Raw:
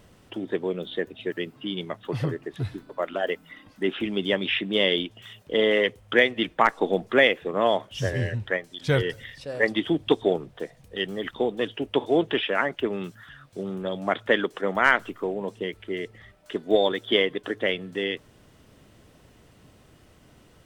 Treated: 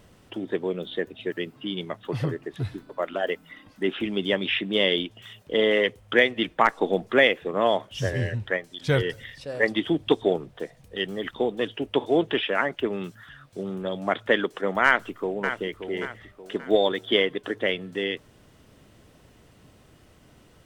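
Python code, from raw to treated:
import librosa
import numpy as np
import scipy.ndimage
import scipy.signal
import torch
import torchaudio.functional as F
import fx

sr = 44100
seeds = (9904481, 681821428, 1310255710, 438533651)

y = fx.echo_throw(x, sr, start_s=14.85, length_s=0.75, ms=580, feedback_pct=40, wet_db=-9.0)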